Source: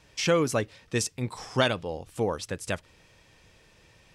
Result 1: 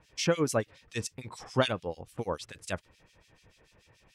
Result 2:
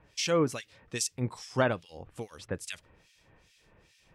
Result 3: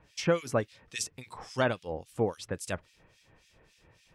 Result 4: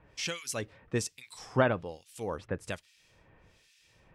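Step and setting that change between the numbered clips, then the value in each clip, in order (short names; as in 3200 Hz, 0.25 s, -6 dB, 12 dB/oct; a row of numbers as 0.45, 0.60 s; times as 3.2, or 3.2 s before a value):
harmonic tremolo, rate: 6.9, 2.4, 3.6, 1.2 Hz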